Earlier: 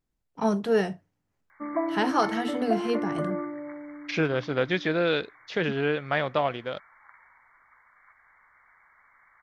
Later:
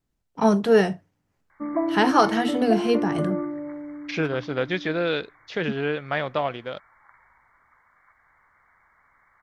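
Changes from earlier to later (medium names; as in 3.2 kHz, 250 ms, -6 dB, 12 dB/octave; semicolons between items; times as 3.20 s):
first voice +6.0 dB; background: add tilt EQ -3 dB/octave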